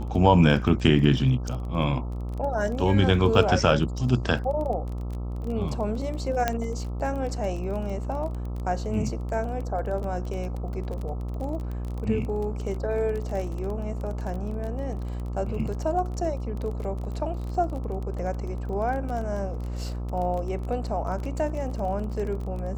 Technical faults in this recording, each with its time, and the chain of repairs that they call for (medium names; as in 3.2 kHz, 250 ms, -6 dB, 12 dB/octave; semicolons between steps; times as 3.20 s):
buzz 60 Hz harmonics 22 -31 dBFS
crackle 23 per s -32 dBFS
6.48 s: pop -9 dBFS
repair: de-click; de-hum 60 Hz, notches 22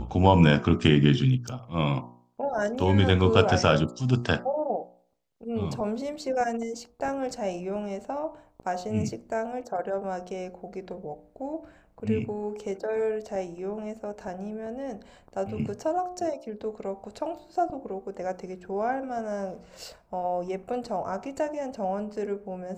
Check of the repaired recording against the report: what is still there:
nothing left